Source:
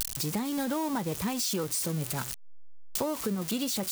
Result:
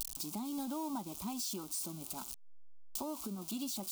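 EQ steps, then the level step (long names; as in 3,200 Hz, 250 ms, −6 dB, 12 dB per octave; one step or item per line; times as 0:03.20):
phaser with its sweep stopped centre 480 Hz, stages 6
−7.5 dB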